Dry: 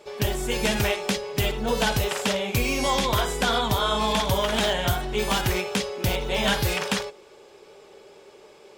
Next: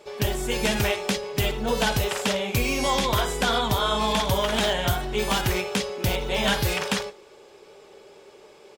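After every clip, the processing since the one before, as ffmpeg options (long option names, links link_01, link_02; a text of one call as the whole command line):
ffmpeg -i in.wav -filter_complex "[0:a]asplit=2[link_01][link_02];[link_02]adelay=139.9,volume=-28dB,highshelf=frequency=4000:gain=-3.15[link_03];[link_01][link_03]amix=inputs=2:normalize=0" out.wav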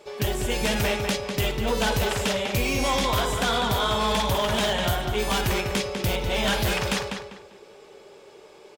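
ffmpeg -i in.wav -filter_complex "[0:a]asplit=2[link_01][link_02];[link_02]adelay=198,lowpass=frequency=4100:poles=1,volume=-6.5dB,asplit=2[link_03][link_04];[link_04]adelay=198,lowpass=frequency=4100:poles=1,volume=0.28,asplit=2[link_05][link_06];[link_06]adelay=198,lowpass=frequency=4100:poles=1,volume=0.28,asplit=2[link_07][link_08];[link_08]adelay=198,lowpass=frequency=4100:poles=1,volume=0.28[link_09];[link_01][link_03][link_05][link_07][link_09]amix=inputs=5:normalize=0,asoftclip=type=hard:threshold=-18.5dB" out.wav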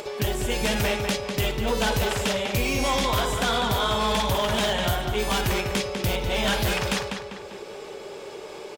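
ffmpeg -i in.wav -af "acompressor=mode=upward:threshold=-27dB:ratio=2.5" out.wav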